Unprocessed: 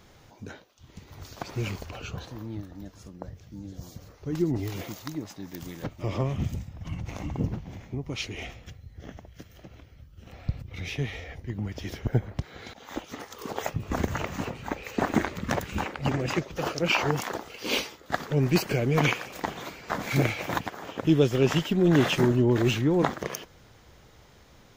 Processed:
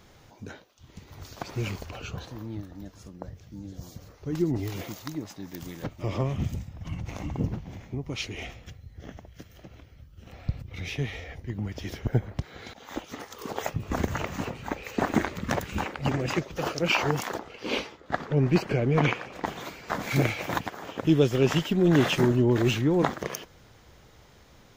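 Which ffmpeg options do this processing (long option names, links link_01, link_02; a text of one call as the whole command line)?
ffmpeg -i in.wav -filter_complex "[0:a]asplit=3[link_01][link_02][link_03];[link_01]afade=type=out:start_time=17.38:duration=0.02[link_04];[link_02]aemphasis=mode=reproduction:type=75fm,afade=type=in:start_time=17.38:duration=0.02,afade=type=out:start_time=19.44:duration=0.02[link_05];[link_03]afade=type=in:start_time=19.44:duration=0.02[link_06];[link_04][link_05][link_06]amix=inputs=3:normalize=0" out.wav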